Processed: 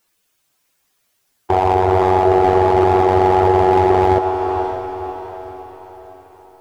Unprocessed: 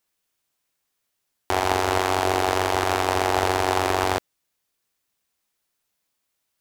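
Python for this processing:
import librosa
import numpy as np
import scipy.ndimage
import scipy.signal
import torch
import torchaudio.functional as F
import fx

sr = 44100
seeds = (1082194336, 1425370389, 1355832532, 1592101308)

p1 = fx.spec_expand(x, sr, power=1.9)
p2 = fx.fold_sine(p1, sr, drive_db=6, ceiling_db=-7.0)
p3 = p1 + F.gain(torch.from_numpy(p2), -10.5).numpy()
p4 = fx.echo_diffused(p3, sr, ms=541, feedback_pct=46, wet_db=-7)
p5 = fx.slew_limit(p4, sr, full_power_hz=160.0)
y = F.gain(torch.from_numpy(p5), 4.5).numpy()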